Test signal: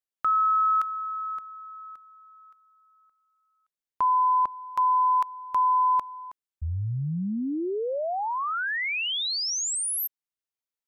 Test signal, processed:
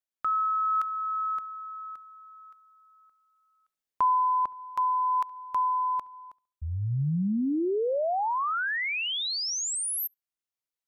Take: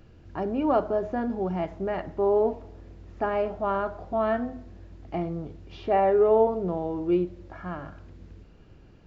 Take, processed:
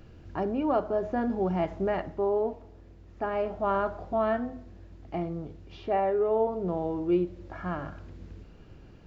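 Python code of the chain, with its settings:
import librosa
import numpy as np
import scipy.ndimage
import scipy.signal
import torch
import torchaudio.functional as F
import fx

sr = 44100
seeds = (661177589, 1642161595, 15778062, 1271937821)

p1 = fx.rider(x, sr, range_db=4, speed_s=0.5)
p2 = p1 + fx.echo_filtered(p1, sr, ms=69, feedback_pct=33, hz=3200.0, wet_db=-24.0, dry=0)
y = p2 * librosa.db_to_amplitude(-2.0)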